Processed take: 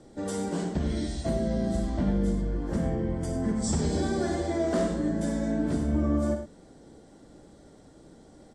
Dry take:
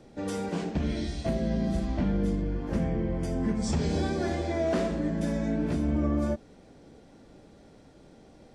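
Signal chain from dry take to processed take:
thirty-one-band graphic EQ 315 Hz +3 dB, 2,500 Hz −10 dB, 8,000 Hz +10 dB
multi-tap delay 56/100 ms −9.5/−10 dB
MP3 64 kbit/s 32,000 Hz

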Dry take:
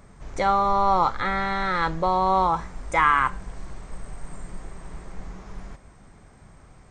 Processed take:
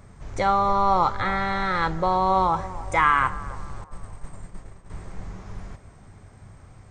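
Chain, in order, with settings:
parametric band 100 Hz +11 dB 0.51 octaves
0:03.84–0:04.90: downward expander −27 dBFS
on a send: feedback echo with a band-pass in the loop 283 ms, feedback 59%, band-pass 570 Hz, level −15 dB

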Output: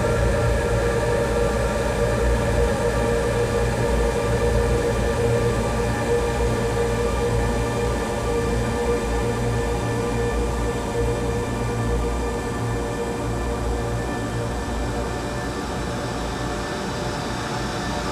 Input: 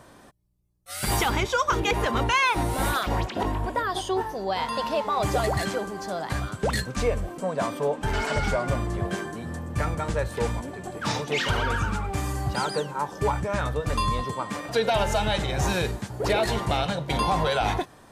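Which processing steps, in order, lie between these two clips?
extreme stretch with random phases 29×, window 1.00 s, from 0:10.24
in parallel at −7 dB: soft clipping −29.5 dBFS, distortion −9 dB
on the sum: level +4.5 dB

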